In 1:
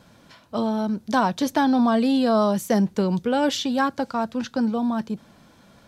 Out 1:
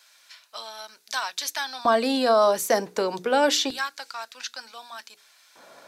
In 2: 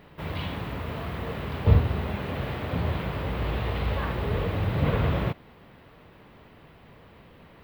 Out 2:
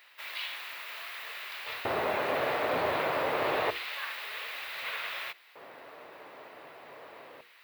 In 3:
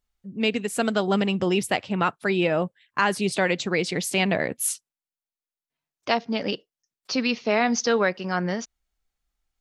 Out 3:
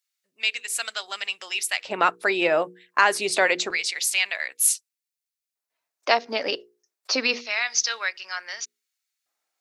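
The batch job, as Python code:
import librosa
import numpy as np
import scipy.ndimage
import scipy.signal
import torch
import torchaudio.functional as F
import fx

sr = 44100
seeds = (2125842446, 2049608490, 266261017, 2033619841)

p1 = fx.filter_lfo_highpass(x, sr, shape='square', hz=0.27, low_hz=440.0, high_hz=2400.0, q=0.8)
p2 = fx.graphic_eq_31(p1, sr, hz=(200, 630, 3150), db=(-9, 3, -5))
p3 = fx.over_compress(p2, sr, threshold_db=-19.0, ratio=-1.0)
p4 = p2 + F.gain(torch.from_numpy(p3), 2.0).numpy()
p5 = fx.hum_notches(p4, sr, base_hz=60, count=8)
p6 = fx.dynamic_eq(p5, sr, hz=600.0, q=0.74, threshold_db=-26.0, ratio=4.0, max_db=-5)
y = F.gain(torch.from_numpy(p6), -1.0).numpy()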